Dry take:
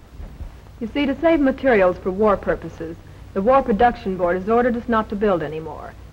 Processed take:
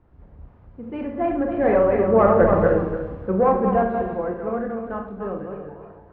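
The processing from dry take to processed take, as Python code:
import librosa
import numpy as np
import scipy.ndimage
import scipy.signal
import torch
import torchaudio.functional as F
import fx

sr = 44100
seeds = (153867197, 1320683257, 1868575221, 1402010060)

y = fx.reverse_delay_fb(x, sr, ms=146, feedback_pct=54, wet_db=-4)
y = fx.doppler_pass(y, sr, speed_mps=13, closest_m=4.2, pass_at_s=2.65)
y = scipy.signal.sosfilt(scipy.signal.butter(2, 1300.0, 'lowpass', fs=sr, output='sos'), y)
y = fx.rev_schroeder(y, sr, rt60_s=0.45, comb_ms=31, drr_db=4.5)
y = y * librosa.db_to_amplitude(5.0)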